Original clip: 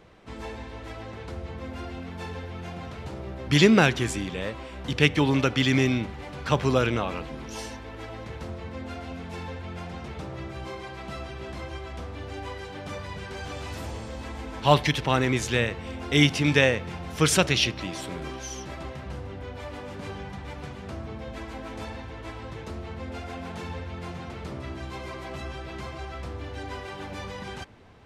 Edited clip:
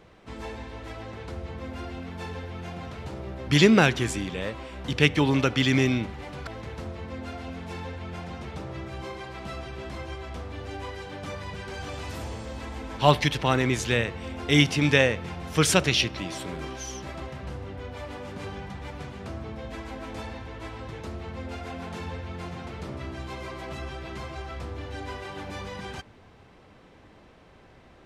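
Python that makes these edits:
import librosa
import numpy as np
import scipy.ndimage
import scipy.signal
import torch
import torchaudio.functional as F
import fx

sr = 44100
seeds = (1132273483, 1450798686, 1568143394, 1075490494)

y = fx.edit(x, sr, fx.cut(start_s=6.47, length_s=1.63), tone=tone)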